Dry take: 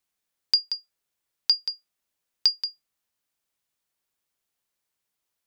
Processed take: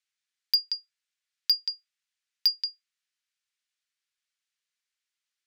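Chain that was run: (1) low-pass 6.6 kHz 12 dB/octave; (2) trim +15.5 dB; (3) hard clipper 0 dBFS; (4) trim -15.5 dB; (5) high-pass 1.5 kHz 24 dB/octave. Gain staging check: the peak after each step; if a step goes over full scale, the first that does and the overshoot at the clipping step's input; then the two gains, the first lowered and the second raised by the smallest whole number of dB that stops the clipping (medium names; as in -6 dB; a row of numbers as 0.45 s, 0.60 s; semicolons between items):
-10.0 dBFS, +5.5 dBFS, 0.0 dBFS, -15.5 dBFS, -12.0 dBFS; step 2, 5.5 dB; step 2 +9.5 dB, step 4 -9.5 dB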